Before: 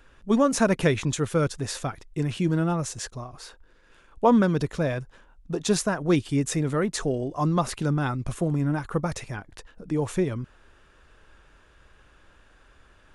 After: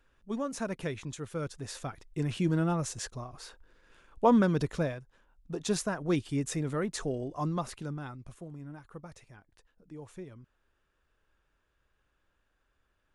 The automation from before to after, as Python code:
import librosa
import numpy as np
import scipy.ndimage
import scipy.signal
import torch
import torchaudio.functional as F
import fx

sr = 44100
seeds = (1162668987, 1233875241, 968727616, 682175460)

y = fx.gain(x, sr, db=fx.line((1.24, -13.5), (2.33, -4.0), (4.82, -4.0), (5.01, -14.5), (5.59, -7.0), (7.37, -7.0), (8.48, -19.5)))